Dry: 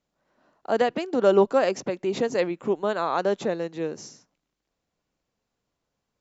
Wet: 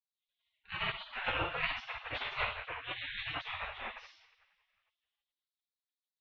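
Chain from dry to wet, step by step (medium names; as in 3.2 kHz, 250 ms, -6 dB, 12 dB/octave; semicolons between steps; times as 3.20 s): two-slope reverb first 0.64 s, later 2.3 s, from -21 dB, DRR -5.5 dB; mistuned SSB -180 Hz 300–3100 Hz; spectral gate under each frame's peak -30 dB weak; trim +4.5 dB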